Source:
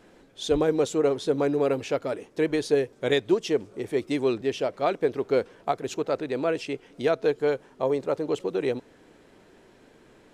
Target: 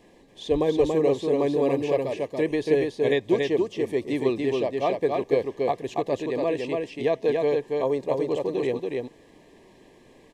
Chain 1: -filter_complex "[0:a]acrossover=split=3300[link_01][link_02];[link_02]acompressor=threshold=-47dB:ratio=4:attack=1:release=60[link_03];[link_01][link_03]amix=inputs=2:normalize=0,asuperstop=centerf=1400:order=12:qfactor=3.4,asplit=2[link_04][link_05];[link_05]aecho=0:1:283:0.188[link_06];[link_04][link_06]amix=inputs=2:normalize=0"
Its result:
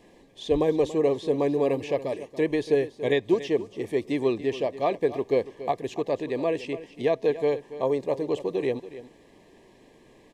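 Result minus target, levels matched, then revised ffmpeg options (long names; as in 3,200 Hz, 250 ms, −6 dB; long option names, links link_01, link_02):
echo-to-direct −11.5 dB
-filter_complex "[0:a]acrossover=split=3300[link_01][link_02];[link_02]acompressor=threshold=-47dB:ratio=4:attack=1:release=60[link_03];[link_01][link_03]amix=inputs=2:normalize=0,asuperstop=centerf=1400:order=12:qfactor=3.4,asplit=2[link_04][link_05];[link_05]aecho=0:1:283:0.708[link_06];[link_04][link_06]amix=inputs=2:normalize=0"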